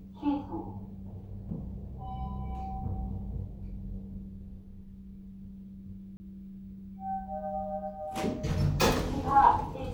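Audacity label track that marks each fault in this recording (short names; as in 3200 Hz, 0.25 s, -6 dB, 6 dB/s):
6.170000	6.200000	gap 30 ms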